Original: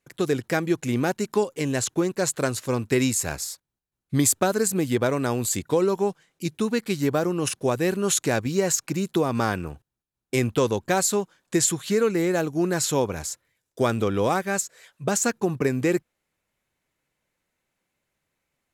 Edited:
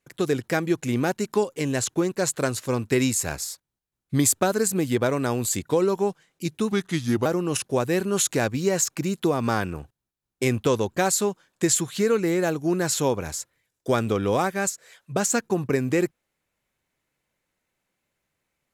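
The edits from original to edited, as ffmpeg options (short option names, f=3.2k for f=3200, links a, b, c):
-filter_complex "[0:a]asplit=3[a][b][c];[a]atrim=end=6.724[d];[b]atrim=start=6.72:end=7.17,asetpts=PTS-STARTPTS,asetrate=37044,aresample=44100[e];[c]atrim=start=7.166[f];[d][e]acrossfade=d=0.004:c1=hsin:c2=hsin[g];[g][f]acrossfade=d=0.004:c1=hsin:c2=hsin"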